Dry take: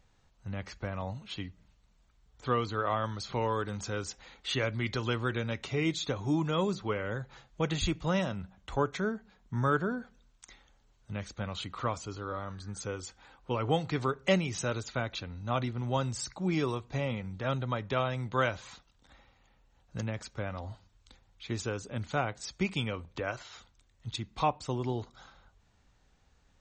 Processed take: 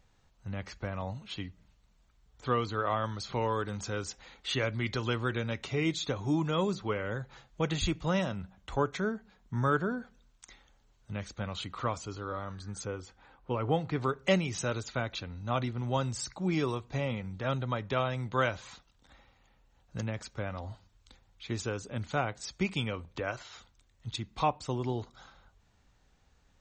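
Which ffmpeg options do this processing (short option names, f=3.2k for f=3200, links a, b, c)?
-filter_complex "[0:a]asettb=1/sr,asplit=3[a][b][c];[a]atrim=end=12.854[d];[b]atrim=start=12.85:end=14.04,asetpts=PTS-STARTPTS,afade=t=in:d=0.004:c=qsin,afade=t=out:st=1.186:d=0.004:c=qsin,lowpass=f=1.9k:p=1[e];[c]atrim=start=14.036[f];[d][e]acrossfade=d=0.004:c1=hsin:c2=qsin[g];[g][f]acrossfade=d=0.004:c1=qsin:c2=hsin"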